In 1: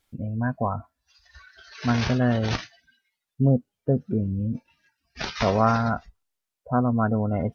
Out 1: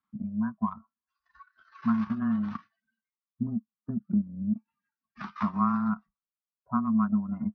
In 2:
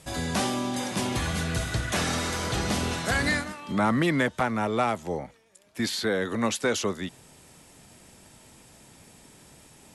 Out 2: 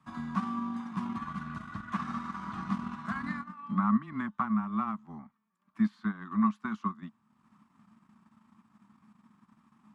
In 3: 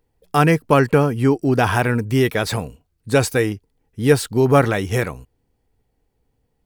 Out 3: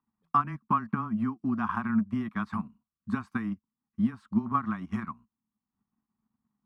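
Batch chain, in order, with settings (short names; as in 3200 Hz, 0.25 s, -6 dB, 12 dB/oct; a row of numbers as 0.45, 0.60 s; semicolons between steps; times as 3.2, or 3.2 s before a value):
compressor 2.5:1, threshold -18 dBFS; frequency shift -13 Hz; dynamic EQ 530 Hz, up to -4 dB, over -34 dBFS, Q 2.3; double band-pass 490 Hz, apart 2.4 oct; transient shaper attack +4 dB, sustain -8 dB; gain +2.5 dB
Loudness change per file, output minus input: -5.0, -6.0, -12.5 LU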